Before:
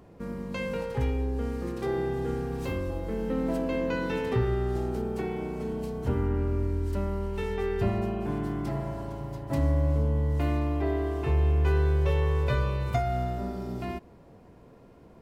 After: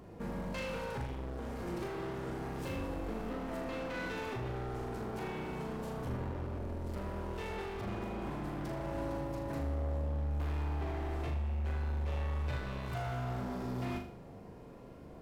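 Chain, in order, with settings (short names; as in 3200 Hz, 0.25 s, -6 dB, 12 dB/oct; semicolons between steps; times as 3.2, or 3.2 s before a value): limiter -26 dBFS, peak gain reduction 10.5 dB; hard clip -36.5 dBFS, distortion -8 dB; flutter echo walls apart 6.8 m, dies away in 0.47 s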